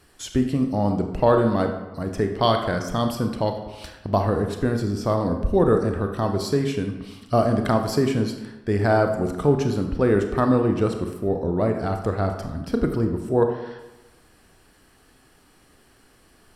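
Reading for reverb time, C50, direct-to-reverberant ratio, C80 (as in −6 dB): 1.1 s, 6.5 dB, 5.0 dB, 9.0 dB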